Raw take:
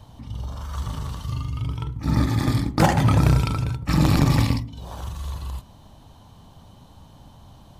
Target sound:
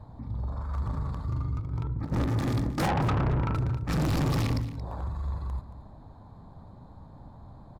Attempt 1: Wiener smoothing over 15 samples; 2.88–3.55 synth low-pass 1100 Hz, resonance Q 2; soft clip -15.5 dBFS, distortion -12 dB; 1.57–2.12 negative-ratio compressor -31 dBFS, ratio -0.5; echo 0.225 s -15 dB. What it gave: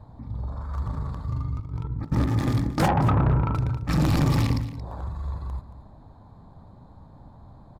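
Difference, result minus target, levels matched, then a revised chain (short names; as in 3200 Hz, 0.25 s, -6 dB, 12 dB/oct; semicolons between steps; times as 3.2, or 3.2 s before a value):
soft clip: distortion -6 dB
Wiener smoothing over 15 samples; 2.88–3.55 synth low-pass 1100 Hz, resonance Q 2; soft clip -23.5 dBFS, distortion -6 dB; 1.57–2.12 negative-ratio compressor -31 dBFS, ratio -0.5; echo 0.225 s -15 dB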